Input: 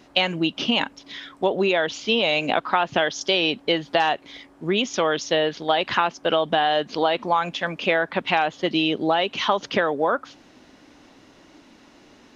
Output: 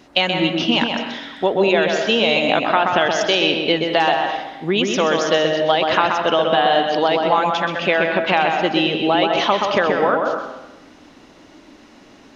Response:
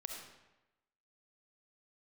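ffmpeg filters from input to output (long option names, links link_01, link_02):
-filter_complex "[0:a]asplit=2[link_01][link_02];[1:a]atrim=start_sample=2205,highshelf=frequency=3600:gain=-8,adelay=128[link_03];[link_02][link_03]afir=irnorm=-1:irlink=0,volume=0.5dB[link_04];[link_01][link_04]amix=inputs=2:normalize=0,volume=3dB"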